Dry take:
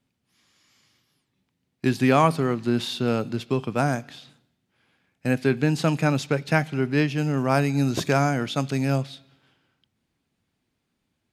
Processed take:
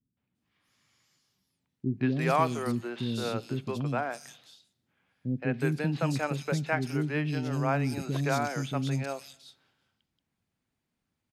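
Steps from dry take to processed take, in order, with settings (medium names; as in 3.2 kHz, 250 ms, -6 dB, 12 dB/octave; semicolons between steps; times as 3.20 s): three bands offset in time lows, mids, highs 170/350 ms, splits 350/3500 Hz; trim -5.5 dB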